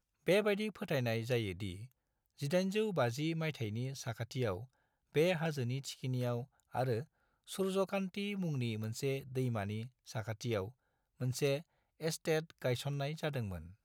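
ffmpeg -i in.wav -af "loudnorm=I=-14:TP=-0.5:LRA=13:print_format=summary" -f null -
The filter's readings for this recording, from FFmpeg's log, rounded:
Input Integrated:    -37.4 LUFS
Input True Peak:     -19.8 dBTP
Input LRA:             2.3 LU
Input Threshold:     -47.8 LUFS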